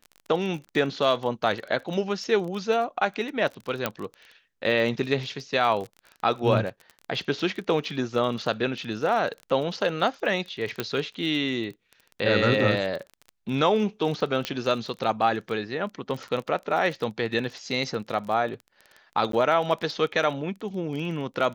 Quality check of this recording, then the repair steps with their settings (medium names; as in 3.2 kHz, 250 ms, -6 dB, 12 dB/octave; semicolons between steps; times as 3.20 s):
crackle 25 per s -32 dBFS
3.86 s: pop -9 dBFS
10.80 s: pop -12 dBFS
14.45 s: pop -12 dBFS
19.32–19.33 s: dropout 13 ms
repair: de-click; interpolate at 19.32 s, 13 ms